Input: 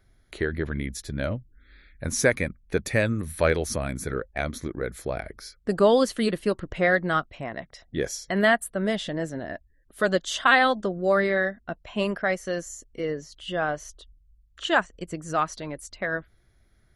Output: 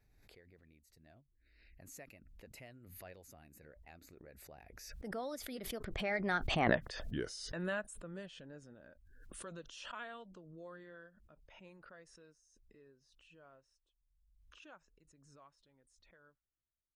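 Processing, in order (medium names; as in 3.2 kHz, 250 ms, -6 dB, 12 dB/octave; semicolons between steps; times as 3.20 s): Doppler pass-by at 6.69 s, 39 m/s, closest 2.1 m; swell ahead of each attack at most 38 dB/s; trim +6 dB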